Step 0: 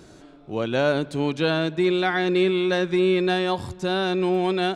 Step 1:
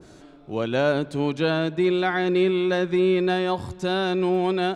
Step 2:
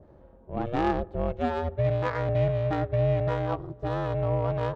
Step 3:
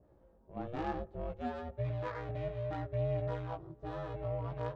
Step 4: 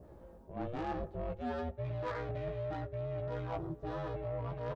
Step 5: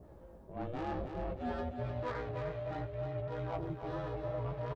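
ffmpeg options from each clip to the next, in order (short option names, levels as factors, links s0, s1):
-af "adynamicequalizer=threshold=0.0141:dfrequency=1900:dqfactor=0.7:tfrequency=1900:tqfactor=0.7:attack=5:release=100:ratio=0.375:range=2:mode=cutabove:tftype=highshelf"
-af "equalizer=f=200:t=o:w=0.33:g=-5.5,aeval=exprs='val(0)*sin(2*PI*240*n/s)':c=same,adynamicsmooth=sensitivity=0.5:basefreq=910"
-af "flanger=delay=16.5:depth=2.7:speed=0.63,volume=0.376"
-filter_complex "[0:a]areverse,acompressor=threshold=0.00708:ratio=10,areverse,asoftclip=type=tanh:threshold=0.0112,asplit=2[s0][s1];[s1]adelay=12,volume=0.224[s2];[s0][s2]amix=inputs=2:normalize=0,volume=3.35"
-af "flanger=delay=0.9:depth=7.3:regen=-80:speed=0.64:shape=sinusoidal,aecho=1:1:306|612|918|1224|1530:0.447|0.174|0.0679|0.0265|0.0103,volume=1.58"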